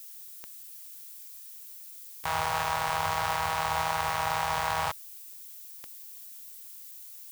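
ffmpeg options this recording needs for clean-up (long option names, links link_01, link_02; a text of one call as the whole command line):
ffmpeg -i in.wav -af "adeclick=threshold=4,afftdn=noise_reduction=30:noise_floor=-46" out.wav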